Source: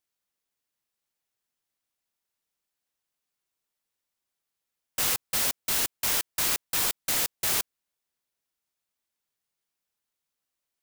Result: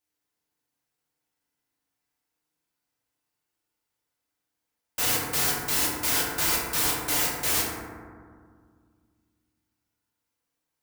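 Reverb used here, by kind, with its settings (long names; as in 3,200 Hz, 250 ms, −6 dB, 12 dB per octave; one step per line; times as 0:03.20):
feedback delay network reverb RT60 1.9 s, low-frequency decay 1.45×, high-frequency decay 0.3×, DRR −6.5 dB
level −3 dB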